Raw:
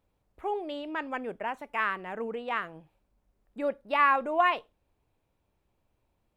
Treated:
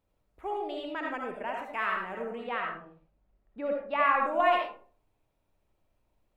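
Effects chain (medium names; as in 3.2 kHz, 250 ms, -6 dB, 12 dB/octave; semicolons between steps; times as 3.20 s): 2.43–4.21 s: low-pass 4.2 kHz -> 2.7 kHz 12 dB/octave; reverberation RT60 0.45 s, pre-delay 35 ms, DRR 0 dB; trim -3.5 dB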